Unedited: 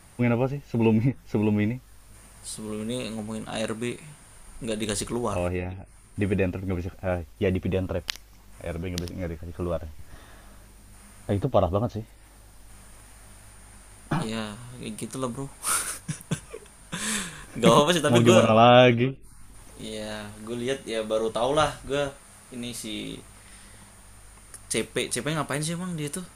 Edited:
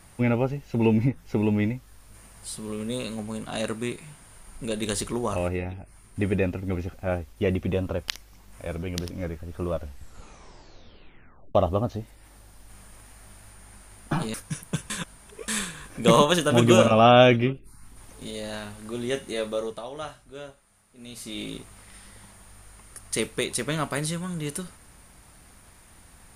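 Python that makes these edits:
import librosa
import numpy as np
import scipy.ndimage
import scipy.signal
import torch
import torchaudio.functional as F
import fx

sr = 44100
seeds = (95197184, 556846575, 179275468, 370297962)

y = fx.edit(x, sr, fx.tape_stop(start_s=9.74, length_s=1.81),
    fx.cut(start_s=14.34, length_s=1.58),
    fx.reverse_span(start_s=16.48, length_s=0.58),
    fx.fade_down_up(start_s=20.98, length_s=2.03, db=-13.5, fade_s=0.47), tone=tone)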